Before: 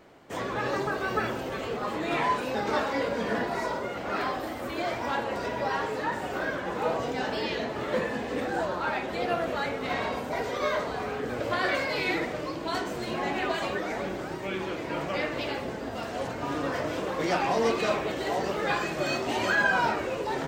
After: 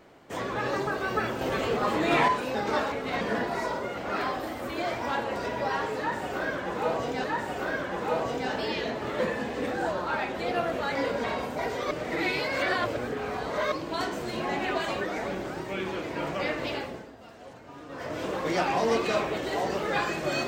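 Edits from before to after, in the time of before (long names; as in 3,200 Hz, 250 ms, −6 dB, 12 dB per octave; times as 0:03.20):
0:01.41–0:02.28: clip gain +5 dB
0:02.92–0:03.21: swap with 0:09.69–0:09.98
0:05.98–0:07.24: repeat, 2 plays
0:10.65–0:12.46: reverse
0:15.46–0:17.03: duck −14 dB, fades 0.41 s linear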